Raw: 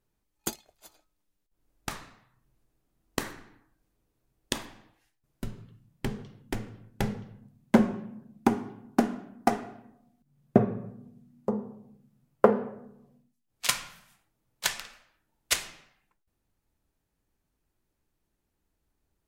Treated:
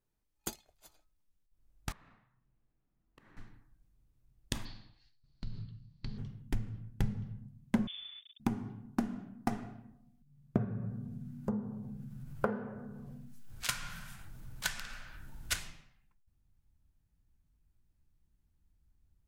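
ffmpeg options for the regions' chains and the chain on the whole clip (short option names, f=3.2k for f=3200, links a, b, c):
-filter_complex "[0:a]asettb=1/sr,asplit=3[a][b][c];[a]atrim=end=1.924[d];[b]atrim=start=1.92:end=3.37,asetpts=PTS-STARTPTS,afade=t=in:d=0.004:c=qsin,afade=t=out:st=1.446:d=0.004:c=qsin,acrossover=split=170 3000:gain=0.251 1 0.126[e][f][g];[e][f][g]amix=inputs=3:normalize=0,acompressor=threshold=-51dB:ratio=10:attack=3.2:release=140:knee=1:detection=peak[h];[c]atrim=start=3.366[i];[d][h]acrossfade=d=0.004:c1=hsin:c2=qsin[j];[j][i]acrossfade=d=0.004:c1=qsin:c2=hsin,asettb=1/sr,asplit=3[k][l][m];[k]atrim=end=4.654[n];[l]atrim=start=4.65:end=6.18,asetpts=PTS-STARTPTS,afade=t=in:d=0.004:c=qsin,afade=t=out:st=1.526:d=0.004:c=qsin,acompressor=threshold=-41dB:ratio=5:attack=3.2:release=140:knee=1:detection=peak,lowpass=f=4.4k:t=q:w=12[o];[m]atrim=start=6.176[p];[n][o]acrossfade=d=0.004:c1=hsin:c2=qsin[q];[q][p]acrossfade=d=0.004:c1=qsin:c2=hsin,asettb=1/sr,asplit=3[r][s][t];[r]atrim=end=7.874[u];[s]atrim=start=7.87:end=8.4,asetpts=PTS-STARTPTS,afade=t=in:d=0.004:c=qsin,afade=t=out:st=0.526:d=0.004:c=qsin,acrusher=bits=7:mix=0:aa=0.5,lowpass=f=3.1k:t=q:w=0.5098,lowpass=f=3.1k:t=q:w=0.6013,lowpass=f=3.1k:t=q:w=0.9,lowpass=f=3.1k:t=q:w=2.563,afreqshift=-3700[v];[t]atrim=start=8.396[w];[u][v]acrossfade=d=0.004:c1=hsin:c2=qsin[x];[x][w]acrossfade=d=0.004:c1=qsin:c2=hsin,asettb=1/sr,asplit=3[y][z][aa];[y]atrim=end=10.584[ab];[z]atrim=start=10.58:end=15.59,asetpts=PTS-STARTPTS,afade=t=in:d=0.004:c=qsin,afade=t=out:st=5.006:d=0.004:c=qsin,acompressor=mode=upward:threshold=-31dB:ratio=2.5:attack=3.2:release=140:knee=2.83:detection=peak,equalizer=f=1.5k:t=o:w=0.23:g=9.5[ac];[aa]atrim=start=15.586[ad];[ab][ac]acrossfade=d=0.004:c1=hsin:c2=qsin[ae];[ae][ad]acrossfade=d=0.004:c1=qsin:c2=hsin,asubboost=boost=7:cutoff=160,acompressor=threshold=-23dB:ratio=2.5,volume=-6.5dB"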